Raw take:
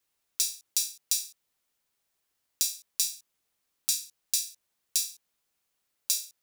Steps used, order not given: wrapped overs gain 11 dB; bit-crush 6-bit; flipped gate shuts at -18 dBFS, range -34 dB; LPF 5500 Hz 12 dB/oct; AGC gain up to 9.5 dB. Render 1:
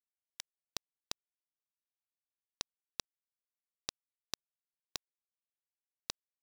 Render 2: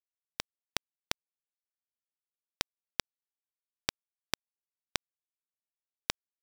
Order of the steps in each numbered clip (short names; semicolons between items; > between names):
flipped gate > AGC > wrapped overs > LPF > bit-crush; wrapped overs > LPF > flipped gate > bit-crush > AGC